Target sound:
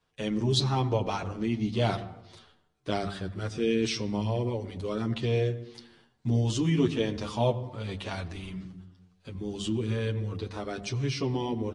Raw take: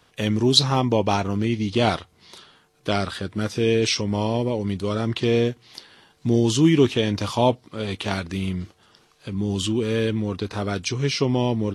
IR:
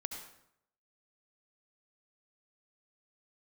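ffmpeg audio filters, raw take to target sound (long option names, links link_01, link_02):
-filter_complex "[0:a]agate=range=-9dB:threshold=-51dB:ratio=16:detection=peak,bandreject=frequency=50:width_type=h:width=6,bandreject=frequency=100:width_type=h:width=6,bandreject=frequency=150:width_type=h:width=6,bandreject=frequency=200:width_type=h:width=6,bandreject=frequency=250:width_type=h:width=6,asplit=2[link_01][link_02];[link_02]aemphasis=mode=reproduction:type=riaa[link_03];[1:a]atrim=start_sample=2205,asetrate=37485,aresample=44100[link_04];[link_03][link_04]afir=irnorm=-1:irlink=0,volume=-9dB[link_05];[link_01][link_05]amix=inputs=2:normalize=0,aresample=22050,aresample=44100,asplit=2[link_06][link_07];[link_07]adelay=8.7,afreqshift=-0.87[link_08];[link_06][link_08]amix=inputs=2:normalize=1,volume=-7dB"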